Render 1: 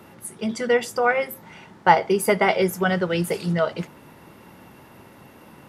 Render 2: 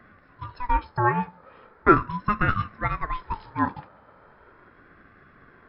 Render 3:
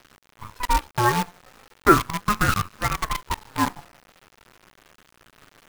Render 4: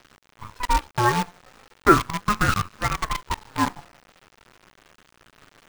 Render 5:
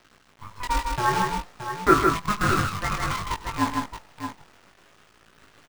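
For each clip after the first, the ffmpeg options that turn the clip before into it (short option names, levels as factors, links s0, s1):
-af "highshelf=f=1700:t=q:w=1.5:g=-11.5,afftfilt=real='re*between(b*sr/4096,400,4800)':imag='im*between(b*sr/4096,400,4800)':win_size=4096:overlap=0.75,aeval=exprs='val(0)*sin(2*PI*500*n/s+500*0.3/0.38*sin(2*PI*0.38*n/s))':c=same"
-af "acrusher=bits=5:dc=4:mix=0:aa=0.000001,volume=1.19"
-af "equalizer=f=13000:w=1.4:g=-8.5"
-filter_complex "[0:a]flanger=delay=18.5:depth=2.9:speed=0.57,asplit=2[s0][s1];[s1]aecho=0:1:95|156|622:0.141|0.631|0.355[s2];[s0][s2]amix=inputs=2:normalize=0"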